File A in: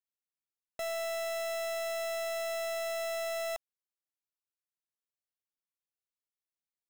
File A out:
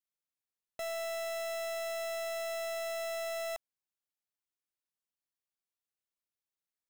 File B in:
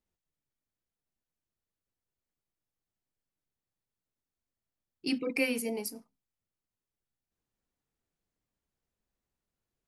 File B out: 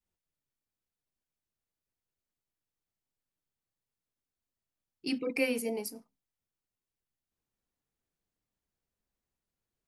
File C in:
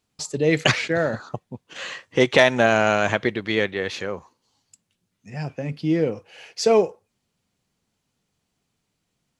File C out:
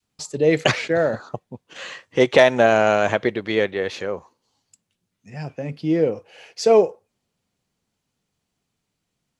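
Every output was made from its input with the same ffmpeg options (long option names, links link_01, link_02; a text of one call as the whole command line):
ffmpeg -i in.wav -af "adynamicequalizer=threshold=0.0224:dfrequency=540:dqfactor=0.86:tfrequency=540:tqfactor=0.86:attack=5:release=100:ratio=0.375:range=3:mode=boostabove:tftype=bell,volume=-2dB" out.wav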